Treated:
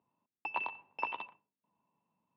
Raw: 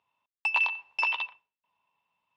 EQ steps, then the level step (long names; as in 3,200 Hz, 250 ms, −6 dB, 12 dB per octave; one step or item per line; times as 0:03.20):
resonant band-pass 220 Hz, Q 1.7
high-frequency loss of the air 75 metres
+13.5 dB